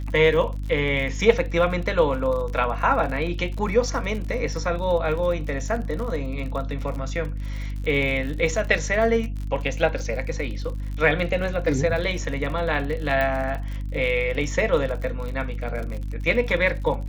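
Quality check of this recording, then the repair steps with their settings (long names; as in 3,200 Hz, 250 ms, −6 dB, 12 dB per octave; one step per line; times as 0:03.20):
surface crackle 51 per second −31 dBFS
mains hum 50 Hz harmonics 6 −29 dBFS
0:13.21: click −13 dBFS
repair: click removal
hum removal 50 Hz, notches 6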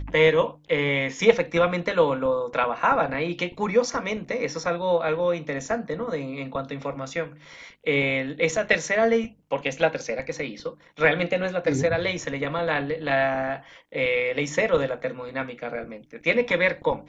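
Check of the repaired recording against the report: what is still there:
none of them is left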